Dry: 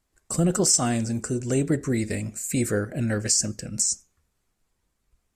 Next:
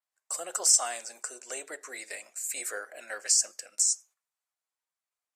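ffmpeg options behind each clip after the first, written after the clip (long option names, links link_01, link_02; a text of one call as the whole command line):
ffmpeg -i in.wav -af "highpass=frequency=640:width=0.5412,highpass=frequency=640:width=1.3066,agate=range=-10dB:threshold=-51dB:ratio=16:detection=peak,adynamicequalizer=threshold=0.0282:dfrequency=6300:dqfactor=0.7:tfrequency=6300:tqfactor=0.7:attack=5:release=100:ratio=0.375:range=2:mode=boostabove:tftype=highshelf,volume=-3.5dB" out.wav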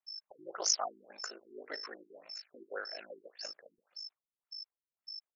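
ffmpeg -i in.wav -af "aeval=exprs='val(0)+0.01*sin(2*PI*5300*n/s)':channel_layout=same,aeval=exprs='val(0)*sin(2*PI*26*n/s)':channel_layout=same,afftfilt=real='re*lt(b*sr/1024,400*pow(7200/400,0.5+0.5*sin(2*PI*1.8*pts/sr)))':imag='im*lt(b*sr/1024,400*pow(7200/400,0.5+0.5*sin(2*PI*1.8*pts/sr)))':win_size=1024:overlap=0.75,volume=1.5dB" out.wav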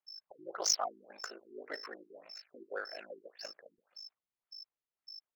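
ffmpeg -i in.wav -af "adynamicsmooth=sensitivity=7.5:basefreq=4300,volume=1dB" out.wav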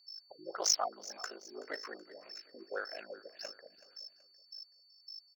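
ffmpeg -i in.wav -af "aeval=exprs='val(0)+0.000708*sin(2*PI*4500*n/s)':channel_layout=same,aecho=1:1:377|754|1131:0.126|0.0516|0.0212,volume=1dB" out.wav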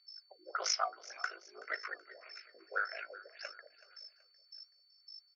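ffmpeg -i in.wav -af "flanger=delay=2.7:depth=6.9:regen=68:speed=0.56:shape=triangular,highpass=frequency=480:width=0.5412,highpass=frequency=480:width=1.3066,equalizer=frequency=540:width_type=q:width=4:gain=-5,equalizer=frequency=880:width_type=q:width=4:gain=-9,equalizer=frequency=1400:width_type=q:width=4:gain=9,equalizer=frequency=2200:width_type=q:width=4:gain=9,equalizer=frequency=4300:width_type=q:width=4:gain=-4,lowpass=frequency=5200:width=0.5412,lowpass=frequency=5200:width=1.3066,volume=5dB" out.wav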